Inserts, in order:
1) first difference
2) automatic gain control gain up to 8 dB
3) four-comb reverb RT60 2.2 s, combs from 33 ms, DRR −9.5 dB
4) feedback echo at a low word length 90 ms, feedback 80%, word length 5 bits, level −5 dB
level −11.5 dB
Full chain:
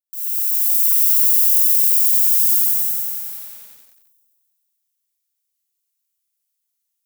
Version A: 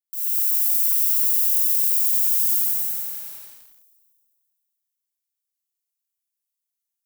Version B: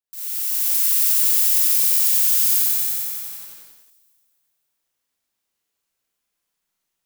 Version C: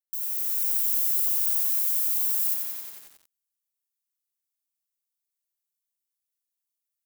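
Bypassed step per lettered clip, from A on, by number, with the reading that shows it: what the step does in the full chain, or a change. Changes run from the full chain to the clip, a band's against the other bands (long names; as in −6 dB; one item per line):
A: 2, change in momentary loudness spread −2 LU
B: 1, change in integrated loudness −3.0 LU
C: 3, change in momentary loudness spread −4 LU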